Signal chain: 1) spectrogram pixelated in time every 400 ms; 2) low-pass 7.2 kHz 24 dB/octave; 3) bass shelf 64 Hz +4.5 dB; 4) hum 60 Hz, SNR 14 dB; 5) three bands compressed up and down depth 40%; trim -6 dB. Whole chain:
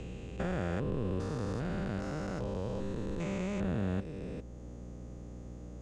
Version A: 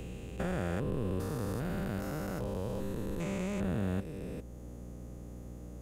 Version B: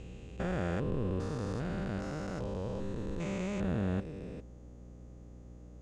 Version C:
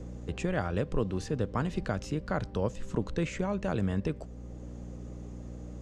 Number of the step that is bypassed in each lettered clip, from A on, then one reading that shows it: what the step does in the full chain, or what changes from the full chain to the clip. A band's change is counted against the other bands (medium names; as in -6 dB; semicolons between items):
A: 2, 8 kHz band +4.0 dB; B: 5, momentary loudness spread change +6 LU; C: 1, 250 Hz band -2.0 dB